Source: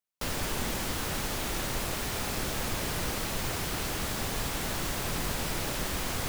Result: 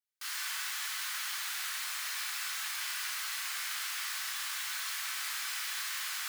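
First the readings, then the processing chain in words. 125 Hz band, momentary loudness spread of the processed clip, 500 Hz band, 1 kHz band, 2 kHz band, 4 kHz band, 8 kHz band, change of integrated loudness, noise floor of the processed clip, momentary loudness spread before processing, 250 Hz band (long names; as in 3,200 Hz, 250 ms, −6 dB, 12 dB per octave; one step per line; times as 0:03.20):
below −40 dB, 0 LU, −30.0 dB, −7.5 dB, −0.5 dB, −0.5 dB, −1.5 dB, −2.5 dB, −38 dBFS, 0 LU, below −40 dB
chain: inverse Chebyshev high-pass filter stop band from 220 Hz, stop band 80 dB
parametric band 2,600 Hz −2.5 dB 0.25 octaves
rectangular room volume 930 cubic metres, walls mixed, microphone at 3.6 metres
level −7 dB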